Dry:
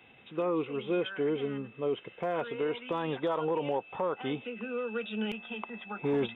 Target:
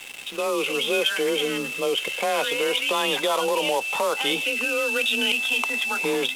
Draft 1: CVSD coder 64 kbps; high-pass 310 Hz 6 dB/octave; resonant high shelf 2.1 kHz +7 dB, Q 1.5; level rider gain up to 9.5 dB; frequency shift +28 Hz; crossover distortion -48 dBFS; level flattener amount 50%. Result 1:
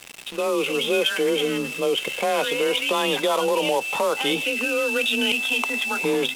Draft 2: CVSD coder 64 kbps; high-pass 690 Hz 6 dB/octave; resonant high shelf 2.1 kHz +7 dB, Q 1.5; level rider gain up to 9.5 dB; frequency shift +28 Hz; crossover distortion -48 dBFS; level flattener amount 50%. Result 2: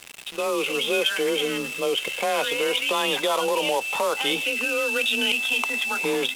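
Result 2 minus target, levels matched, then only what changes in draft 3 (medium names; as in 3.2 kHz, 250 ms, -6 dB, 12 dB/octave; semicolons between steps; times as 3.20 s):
crossover distortion: distortion +6 dB
change: crossover distortion -54 dBFS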